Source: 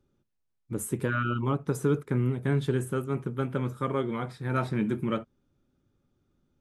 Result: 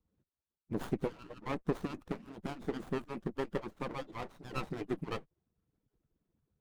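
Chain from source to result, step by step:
harmonic-percussive split with one part muted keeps percussive
windowed peak hold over 17 samples
level −2.5 dB

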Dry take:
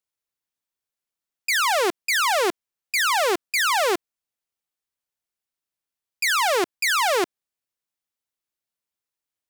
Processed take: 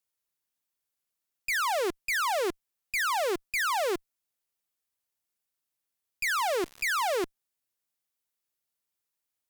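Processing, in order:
high-shelf EQ 8,200 Hz +6.5 dB
0:06.23–0:07.15: surface crackle 120 per second −32 dBFS
tube saturation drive 26 dB, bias 0.3

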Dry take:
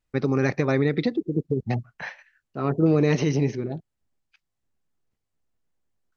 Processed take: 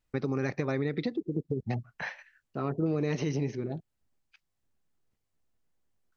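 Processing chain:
downward compressor 2 to 1, threshold −33 dBFS, peak gain reduction 10 dB

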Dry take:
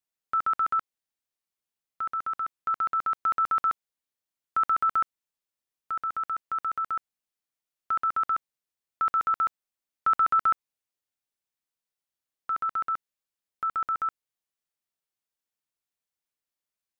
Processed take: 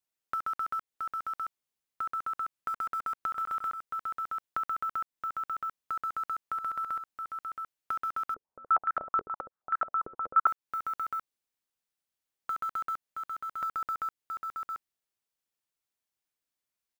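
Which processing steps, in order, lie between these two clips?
one scale factor per block 5 bits
single-tap delay 672 ms −8.5 dB
downward compressor 6 to 1, threshold −31 dBFS, peak gain reduction 12.5 dB
0:08.34–0:10.47: low-pass on a step sequencer 9.4 Hz 430–1,600 Hz

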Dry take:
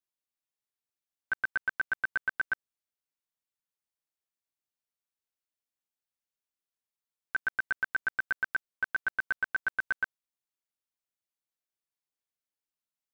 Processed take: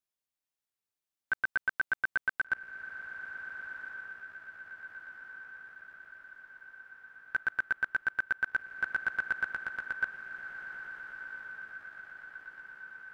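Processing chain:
0:09.47–0:10.03: downward compressor, threshold −32 dBFS, peak gain reduction 7 dB
feedback delay with all-pass diffusion 1,468 ms, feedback 62%, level −9 dB

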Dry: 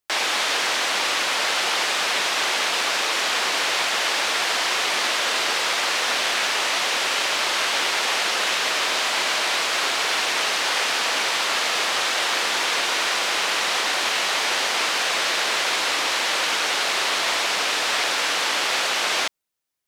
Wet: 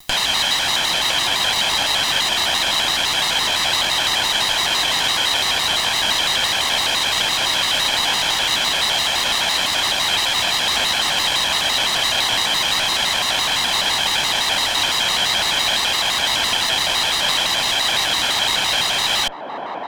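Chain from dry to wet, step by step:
lower of the sound and its delayed copy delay 1.1 ms
parametric band 3,500 Hz +11 dB 0.21 octaves
on a send: delay with a band-pass on its return 584 ms, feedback 66%, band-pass 480 Hz, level −6 dB
on the sum: upward compression, threshold −22 dBFS
pitch modulation by a square or saw wave square 5.9 Hz, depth 160 cents
level +2.5 dB

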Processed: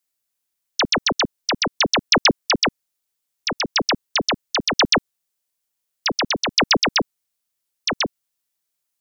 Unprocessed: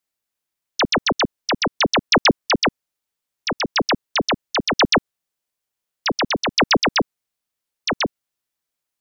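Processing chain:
high-shelf EQ 3,900 Hz +8.5 dB
level −2.5 dB

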